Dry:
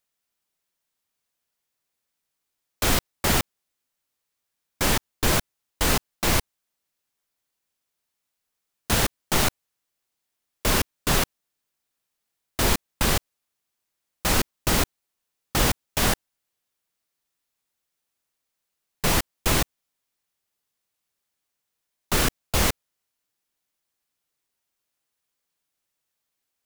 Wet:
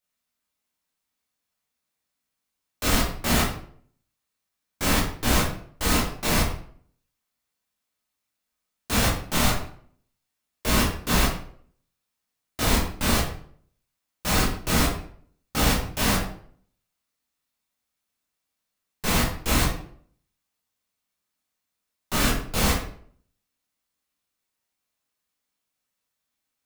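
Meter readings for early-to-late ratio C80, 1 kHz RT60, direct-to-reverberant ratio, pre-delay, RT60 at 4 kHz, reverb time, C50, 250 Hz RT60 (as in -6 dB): 8.0 dB, 0.50 s, -7.0 dB, 12 ms, 0.40 s, 0.55 s, 4.0 dB, 0.60 s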